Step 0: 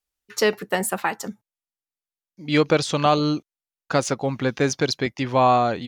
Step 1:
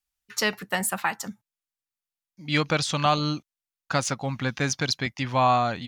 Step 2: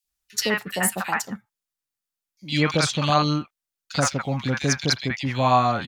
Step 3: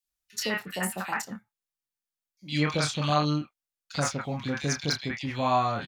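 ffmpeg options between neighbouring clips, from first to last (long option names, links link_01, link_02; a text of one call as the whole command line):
ffmpeg -i in.wav -af "equalizer=frequency=410:width_type=o:width=1.2:gain=-11.5" out.wav
ffmpeg -i in.wav -filter_complex "[0:a]acrossover=split=780|2500[link_01][link_02][link_03];[link_01]adelay=40[link_04];[link_02]adelay=80[link_05];[link_04][link_05][link_03]amix=inputs=3:normalize=0,volume=4dB" out.wav
ffmpeg -i in.wav -filter_complex "[0:a]asplit=2[link_01][link_02];[link_02]adelay=27,volume=-7dB[link_03];[link_01][link_03]amix=inputs=2:normalize=0,deesser=0.35,volume=-6.5dB" out.wav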